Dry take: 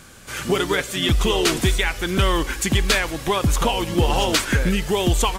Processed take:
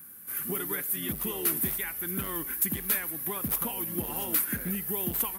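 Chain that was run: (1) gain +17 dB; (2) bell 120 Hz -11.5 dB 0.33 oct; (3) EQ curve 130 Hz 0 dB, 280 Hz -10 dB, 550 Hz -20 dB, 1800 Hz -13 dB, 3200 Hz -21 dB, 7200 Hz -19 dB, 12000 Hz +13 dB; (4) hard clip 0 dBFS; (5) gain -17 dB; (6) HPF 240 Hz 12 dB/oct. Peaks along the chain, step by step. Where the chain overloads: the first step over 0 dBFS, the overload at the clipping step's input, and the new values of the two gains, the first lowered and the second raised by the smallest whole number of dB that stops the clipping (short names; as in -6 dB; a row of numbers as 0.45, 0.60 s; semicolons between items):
+8.5, +9.0, +8.5, 0.0, -17.0, -13.5 dBFS; step 1, 8.5 dB; step 1 +8 dB, step 5 -8 dB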